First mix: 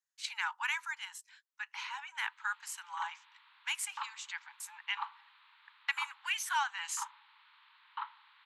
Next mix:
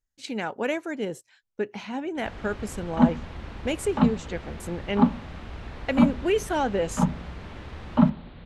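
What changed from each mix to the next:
first sound: unmuted; second sound +7.0 dB; master: remove steep high-pass 890 Hz 96 dB/oct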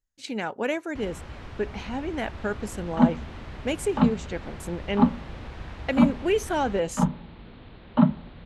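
first sound: entry -1.30 s

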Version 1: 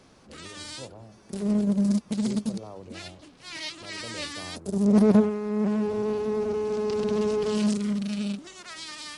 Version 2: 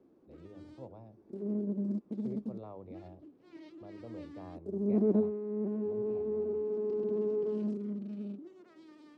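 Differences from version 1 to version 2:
speech -5.0 dB; background: add band-pass 330 Hz, Q 3.3

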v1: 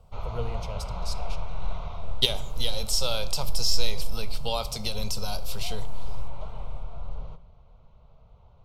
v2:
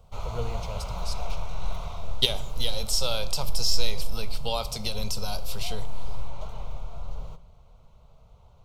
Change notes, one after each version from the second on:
background: remove air absorption 180 m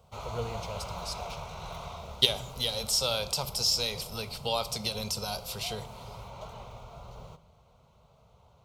background: add HPF 74 Hz 12 dB/oct; master: add low shelf 160 Hz -4 dB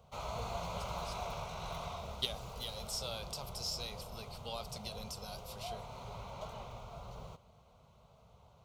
speech -11.0 dB; reverb: off

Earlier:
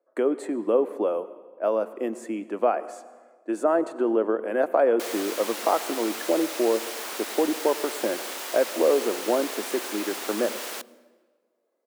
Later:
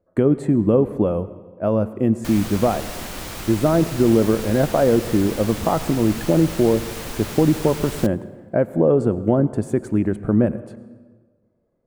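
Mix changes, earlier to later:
background: entry -2.75 s; master: remove Bessel high-pass 500 Hz, order 8

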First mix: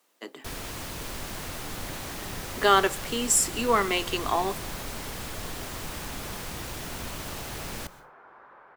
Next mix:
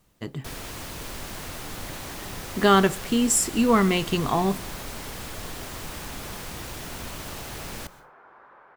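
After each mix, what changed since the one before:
speech: remove Bessel high-pass 440 Hz, order 8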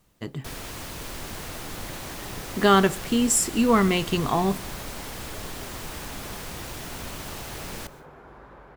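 second sound: remove band-pass 1300 Hz, Q 1

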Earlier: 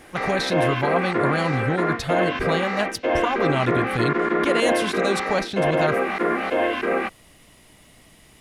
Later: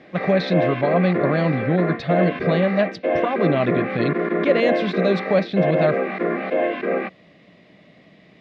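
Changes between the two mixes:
speech +3.5 dB; master: add speaker cabinet 170–3600 Hz, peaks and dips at 180 Hz +9 dB, 590 Hz +5 dB, 910 Hz -10 dB, 1400 Hz -7 dB, 3000 Hz -8 dB

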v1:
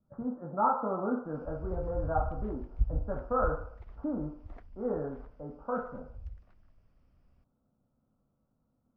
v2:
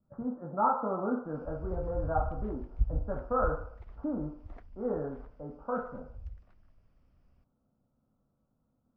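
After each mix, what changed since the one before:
none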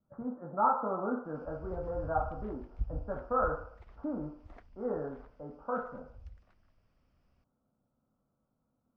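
master: add tilt +1.5 dB/oct

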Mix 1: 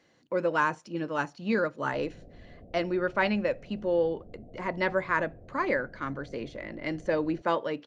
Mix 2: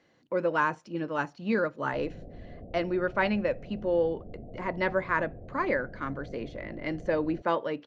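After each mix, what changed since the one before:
speech: add high shelf 6400 Hz -11.5 dB; background +5.5 dB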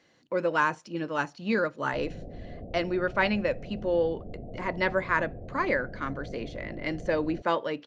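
background +3.5 dB; master: add high shelf 2700 Hz +8.5 dB

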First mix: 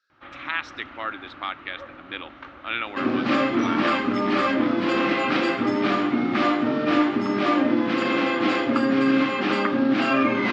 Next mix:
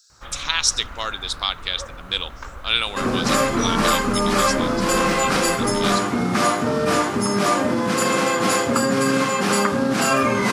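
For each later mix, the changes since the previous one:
speech: add resonant high shelf 2600 Hz +12 dB, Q 1.5; master: remove speaker cabinet 180–3500 Hz, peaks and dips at 180 Hz -10 dB, 300 Hz +9 dB, 460 Hz -10 dB, 710 Hz -3 dB, 1000 Hz -7 dB, 1500 Hz -4 dB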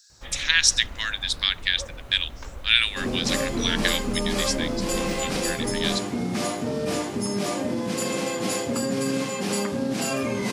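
speech: add resonant high-pass 1700 Hz, resonance Q 6.4; second sound -5.0 dB; master: add bell 1300 Hz -12 dB 0.96 oct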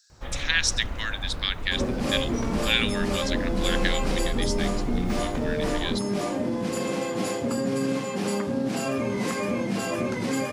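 first sound +6.0 dB; second sound: entry -1.25 s; master: add high shelf 2400 Hz -7.5 dB

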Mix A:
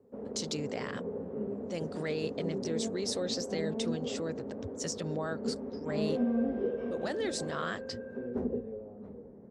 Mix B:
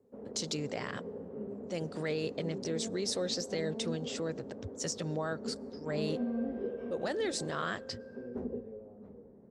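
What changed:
background -8.0 dB; reverb: on, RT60 1.2 s

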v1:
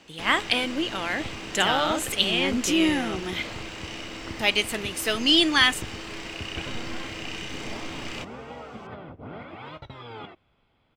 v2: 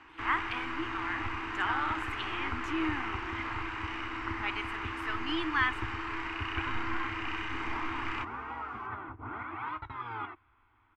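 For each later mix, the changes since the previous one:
speech -11.5 dB; master: add EQ curve 110 Hz 0 dB, 160 Hz -20 dB, 320 Hz +1 dB, 550 Hz -18 dB, 970 Hz +8 dB, 1400 Hz +7 dB, 2300 Hz 0 dB, 3400 Hz -11 dB, 5700 Hz -17 dB, 13000 Hz -22 dB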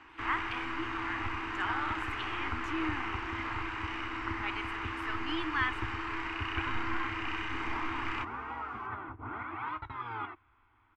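speech -3.0 dB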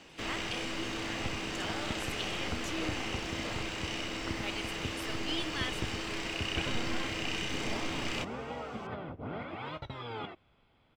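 speech -4.0 dB; master: remove EQ curve 110 Hz 0 dB, 160 Hz -20 dB, 320 Hz +1 dB, 550 Hz -18 dB, 970 Hz +8 dB, 1400 Hz +7 dB, 2300 Hz 0 dB, 3400 Hz -11 dB, 5700 Hz -17 dB, 13000 Hz -22 dB

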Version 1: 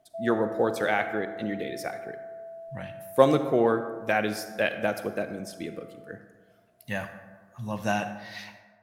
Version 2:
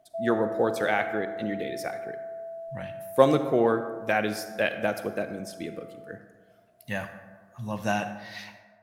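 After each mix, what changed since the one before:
background +3.5 dB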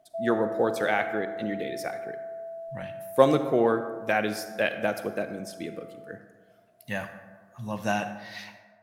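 master: add bell 64 Hz -8 dB 0.88 oct

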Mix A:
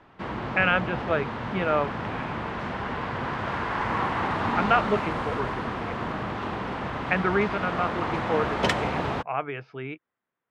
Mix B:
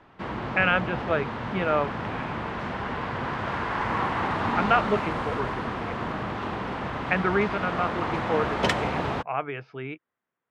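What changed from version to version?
none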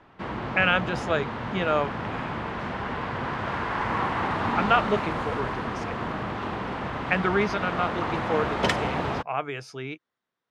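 speech: remove LPF 2800 Hz 24 dB/oct

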